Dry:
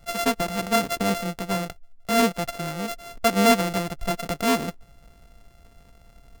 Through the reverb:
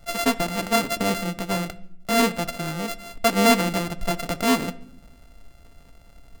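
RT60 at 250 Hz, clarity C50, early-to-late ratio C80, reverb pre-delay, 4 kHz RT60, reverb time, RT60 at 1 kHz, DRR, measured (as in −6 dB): 1.2 s, 19.0 dB, 22.0 dB, 3 ms, 0.50 s, 0.70 s, 0.60 s, 11.0 dB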